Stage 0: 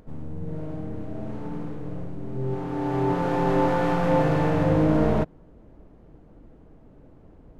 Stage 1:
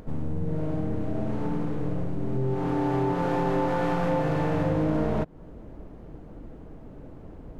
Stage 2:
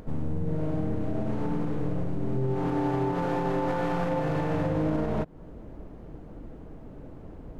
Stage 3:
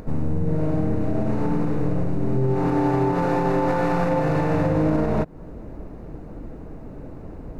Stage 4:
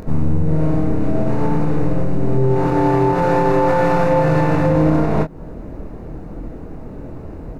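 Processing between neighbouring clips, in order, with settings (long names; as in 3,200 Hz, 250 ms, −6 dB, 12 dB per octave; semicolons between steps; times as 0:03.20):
downward compressor 5 to 1, threshold −30 dBFS, peak gain reduction 12.5 dB; level +7 dB
brickwall limiter −19 dBFS, peak gain reduction 5.5 dB
notch filter 3,200 Hz, Q 5; level +6.5 dB
double-tracking delay 25 ms −6 dB; level +4.5 dB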